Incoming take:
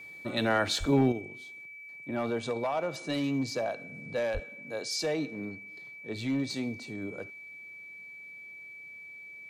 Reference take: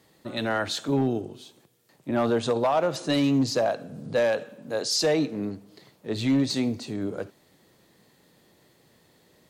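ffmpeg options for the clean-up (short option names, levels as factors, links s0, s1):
-filter_complex "[0:a]bandreject=f=2300:w=30,asplit=3[s0][s1][s2];[s0]afade=t=out:st=0.79:d=0.02[s3];[s1]highpass=f=140:w=0.5412,highpass=f=140:w=1.3066,afade=t=in:st=0.79:d=0.02,afade=t=out:st=0.91:d=0.02[s4];[s2]afade=t=in:st=0.91:d=0.02[s5];[s3][s4][s5]amix=inputs=3:normalize=0,asplit=3[s6][s7][s8];[s6]afade=t=out:st=4.33:d=0.02[s9];[s7]highpass=f=140:w=0.5412,highpass=f=140:w=1.3066,afade=t=in:st=4.33:d=0.02,afade=t=out:st=4.45:d=0.02[s10];[s8]afade=t=in:st=4.45:d=0.02[s11];[s9][s10][s11]amix=inputs=3:normalize=0,asetnsamples=n=441:p=0,asendcmd='1.12 volume volume 8dB',volume=1"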